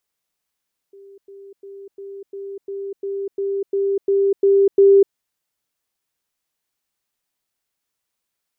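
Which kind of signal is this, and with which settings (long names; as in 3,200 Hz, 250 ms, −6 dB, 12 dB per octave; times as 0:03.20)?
level staircase 395 Hz −40.5 dBFS, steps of 3 dB, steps 12, 0.25 s 0.10 s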